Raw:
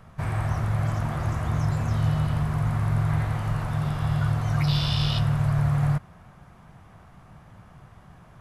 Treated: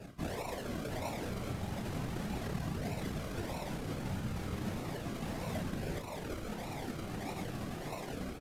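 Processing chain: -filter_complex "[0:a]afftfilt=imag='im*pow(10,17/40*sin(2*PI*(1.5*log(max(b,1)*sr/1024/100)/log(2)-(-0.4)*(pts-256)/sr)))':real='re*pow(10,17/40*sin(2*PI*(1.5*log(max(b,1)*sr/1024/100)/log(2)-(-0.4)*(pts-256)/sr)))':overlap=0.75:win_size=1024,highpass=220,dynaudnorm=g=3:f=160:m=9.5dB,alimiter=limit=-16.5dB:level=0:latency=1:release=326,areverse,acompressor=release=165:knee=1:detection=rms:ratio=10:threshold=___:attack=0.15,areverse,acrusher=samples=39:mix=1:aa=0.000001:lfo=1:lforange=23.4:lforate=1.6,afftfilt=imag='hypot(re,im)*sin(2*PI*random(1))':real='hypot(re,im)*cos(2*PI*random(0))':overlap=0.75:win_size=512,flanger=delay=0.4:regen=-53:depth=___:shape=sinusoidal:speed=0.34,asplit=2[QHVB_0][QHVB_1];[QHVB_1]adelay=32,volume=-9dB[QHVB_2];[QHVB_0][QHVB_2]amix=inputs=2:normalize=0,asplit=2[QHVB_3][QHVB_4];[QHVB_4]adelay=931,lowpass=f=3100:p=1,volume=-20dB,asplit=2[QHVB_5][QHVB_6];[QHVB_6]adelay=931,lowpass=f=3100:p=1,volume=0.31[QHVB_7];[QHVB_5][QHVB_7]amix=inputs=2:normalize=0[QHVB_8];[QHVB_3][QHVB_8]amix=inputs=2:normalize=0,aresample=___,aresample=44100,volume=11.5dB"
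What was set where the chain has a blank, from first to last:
-34dB, 9.8, 32000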